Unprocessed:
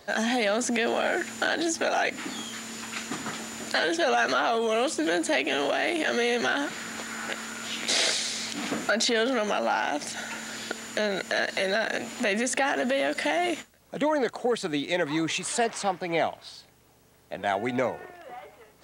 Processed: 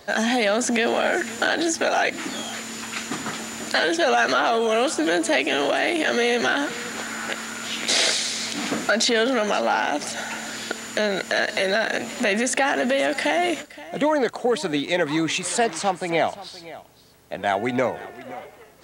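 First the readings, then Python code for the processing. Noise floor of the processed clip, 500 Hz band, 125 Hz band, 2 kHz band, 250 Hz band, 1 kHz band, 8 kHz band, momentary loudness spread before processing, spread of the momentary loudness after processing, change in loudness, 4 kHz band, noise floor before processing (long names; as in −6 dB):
−44 dBFS, +4.5 dB, +4.5 dB, +4.5 dB, +4.5 dB, +4.5 dB, +4.5 dB, 11 LU, 10 LU, +4.5 dB, +4.5 dB, −58 dBFS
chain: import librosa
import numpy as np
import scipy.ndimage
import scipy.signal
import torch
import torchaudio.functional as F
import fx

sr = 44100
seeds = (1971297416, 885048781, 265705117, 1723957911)

y = x + 10.0 ** (-17.5 / 20.0) * np.pad(x, (int(522 * sr / 1000.0), 0))[:len(x)]
y = y * librosa.db_to_amplitude(4.5)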